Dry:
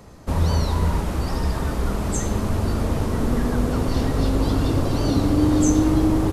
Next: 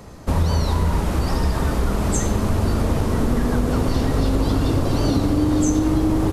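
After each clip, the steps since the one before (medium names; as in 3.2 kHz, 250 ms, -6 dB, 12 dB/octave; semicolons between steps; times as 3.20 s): compression, threshold -19 dBFS, peak gain reduction 7 dB; trim +4.5 dB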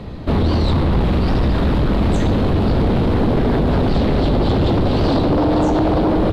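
FFT filter 230 Hz 0 dB, 1.3 kHz -8 dB, 3.9 kHz -1 dB, 6.1 kHz -23 dB; sine folder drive 11 dB, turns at -8 dBFS; trim -4 dB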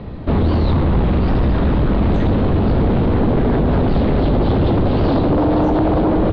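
distance through air 250 m; trim +1 dB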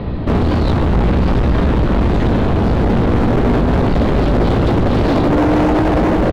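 peak limiter -14.5 dBFS, peak gain reduction 3.5 dB; overload inside the chain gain 20 dB; doubling 17 ms -10.5 dB; trim +8 dB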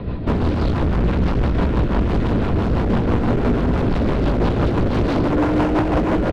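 small resonant body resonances 1/1.4/2.5 kHz, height 7 dB; rotary cabinet horn 6 Hz; loudspeaker Doppler distortion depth 0.38 ms; trim -3 dB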